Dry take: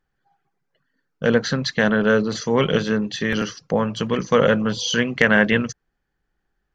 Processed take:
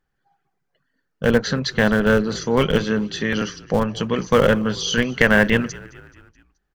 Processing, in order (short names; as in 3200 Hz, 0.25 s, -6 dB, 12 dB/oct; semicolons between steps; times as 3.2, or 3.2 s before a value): in parallel at -5 dB: Schmitt trigger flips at -12 dBFS; on the sum: frequency-shifting echo 0.214 s, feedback 54%, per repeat -45 Hz, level -21.5 dB